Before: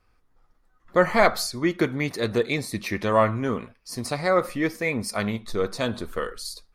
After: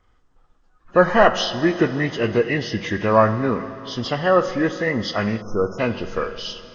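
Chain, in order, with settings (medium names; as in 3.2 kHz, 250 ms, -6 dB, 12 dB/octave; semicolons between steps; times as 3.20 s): knee-point frequency compression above 1.4 kHz 1.5:1; Schroeder reverb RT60 3.3 s, combs from 33 ms, DRR 11.5 dB; spectral selection erased 5.42–5.79 s, 1.5–5.1 kHz; trim +4.5 dB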